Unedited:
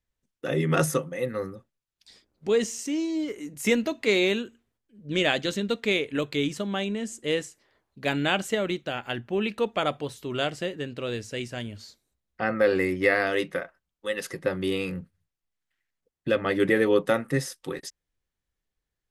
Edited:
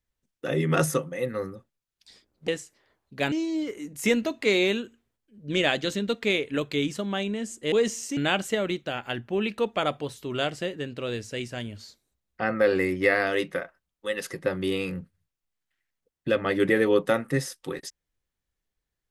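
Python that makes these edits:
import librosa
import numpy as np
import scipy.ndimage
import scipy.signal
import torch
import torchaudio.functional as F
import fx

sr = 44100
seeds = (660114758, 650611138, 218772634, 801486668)

y = fx.edit(x, sr, fx.swap(start_s=2.48, length_s=0.45, other_s=7.33, other_length_s=0.84), tone=tone)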